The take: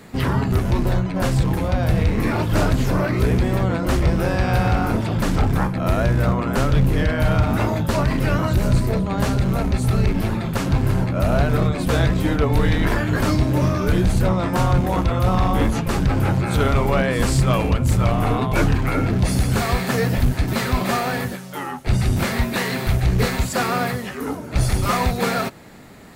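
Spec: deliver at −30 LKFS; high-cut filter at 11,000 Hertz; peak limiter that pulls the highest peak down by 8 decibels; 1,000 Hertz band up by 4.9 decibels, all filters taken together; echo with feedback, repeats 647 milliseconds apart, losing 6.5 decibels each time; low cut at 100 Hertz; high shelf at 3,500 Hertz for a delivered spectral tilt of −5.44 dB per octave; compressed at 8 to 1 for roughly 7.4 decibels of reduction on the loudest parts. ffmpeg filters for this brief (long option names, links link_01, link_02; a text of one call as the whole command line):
ffmpeg -i in.wav -af "highpass=100,lowpass=11000,equalizer=frequency=1000:width_type=o:gain=6,highshelf=frequency=3500:gain=5.5,acompressor=threshold=-21dB:ratio=8,alimiter=limit=-17.5dB:level=0:latency=1,aecho=1:1:647|1294|1941|2588|3235|3882:0.473|0.222|0.105|0.0491|0.0231|0.0109,volume=-4dB" out.wav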